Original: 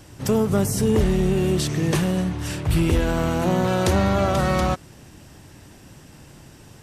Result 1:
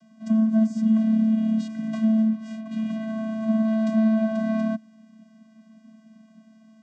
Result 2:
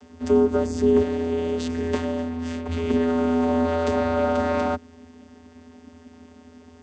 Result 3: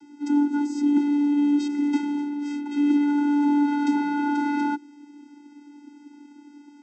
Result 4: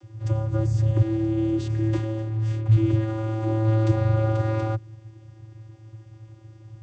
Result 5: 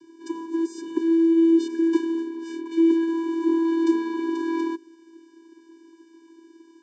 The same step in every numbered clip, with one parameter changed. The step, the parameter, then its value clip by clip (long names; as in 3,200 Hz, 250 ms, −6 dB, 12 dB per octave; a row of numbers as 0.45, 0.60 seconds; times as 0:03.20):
channel vocoder, frequency: 220, 83, 290, 110, 330 Hertz